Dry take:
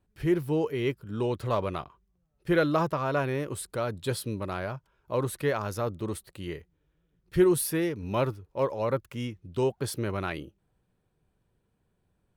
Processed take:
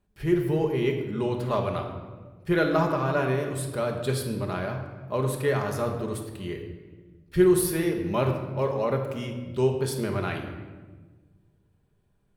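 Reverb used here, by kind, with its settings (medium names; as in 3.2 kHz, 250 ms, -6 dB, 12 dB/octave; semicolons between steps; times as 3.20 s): simulated room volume 1100 m³, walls mixed, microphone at 1.3 m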